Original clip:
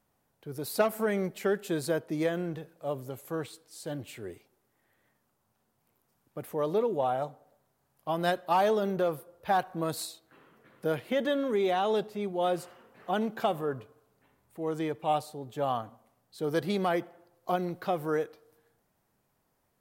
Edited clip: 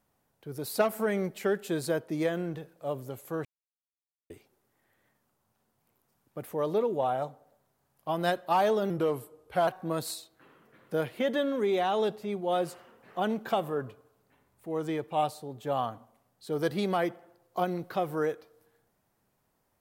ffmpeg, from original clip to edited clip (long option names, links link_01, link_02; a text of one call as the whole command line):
ffmpeg -i in.wav -filter_complex "[0:a]asplit=5[link_01][link_02][link_03][link_04][link_05];[link_01]atrim=end=3.45,asetpts=PTS-STARTPTS,afade=type=out:start_time=3.446:duration=0.004:curve=hsin[link_06];[link_02]atrim=start=3.45:end=4.3,asetpts=PTS-STARTPTS,volume=0[link_07];[link_03]atrim=start=4.3:end=8.904,asetpts=PTS-STARTPTS,afade=type=in:duration=0.004:curve=hsin[link_08];[link_04]atrim=start=8.9:end=9.59,asetpts=PTS-STARTPTS,asetrate=39249,aresample=44100[link_09];[link_05]atrim=start=9.586[link_10];[link_06][link_07][link_08]concat=n=3:v=0:a=1[link_11];[link_11][link_09]acrossfade=duration=0.004:curve1=hsin:curve2=hsin[link_12];[link_12][link_10]acrossfade=duration=0.004:curve1=hsin:curve2=hsin" out.wav